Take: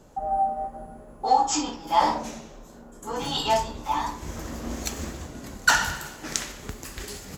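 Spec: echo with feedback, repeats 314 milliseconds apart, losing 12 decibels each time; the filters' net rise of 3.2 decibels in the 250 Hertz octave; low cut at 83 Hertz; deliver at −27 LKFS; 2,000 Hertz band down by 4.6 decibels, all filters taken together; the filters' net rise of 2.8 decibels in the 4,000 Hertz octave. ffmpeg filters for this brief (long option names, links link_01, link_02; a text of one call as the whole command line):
ffmpeg -i in.wav -af "highpass=83,equalizer=frequency=250:width_type=o:gain=4,equalizer=frequency=2000:width_type=o:gain=-8.5,equalizer=frequency=4000:width_type=o:gain=6,aecho=1:1:314|628|942:0.251|0.0628|0.0157,volume=-0.5dB" out.wav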